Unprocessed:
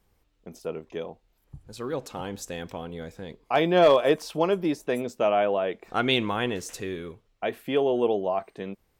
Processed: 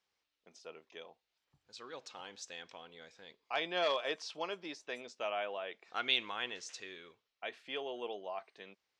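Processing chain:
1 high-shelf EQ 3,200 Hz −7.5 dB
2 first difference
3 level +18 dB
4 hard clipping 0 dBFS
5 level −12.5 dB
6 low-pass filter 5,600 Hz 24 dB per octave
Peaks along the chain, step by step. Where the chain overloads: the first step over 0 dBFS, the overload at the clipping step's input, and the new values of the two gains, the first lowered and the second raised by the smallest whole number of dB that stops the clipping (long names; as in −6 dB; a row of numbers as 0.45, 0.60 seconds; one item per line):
−10.0, −21.0, −3.0, −3.0, −15.5, −15.5 dBFS
no step passes full scale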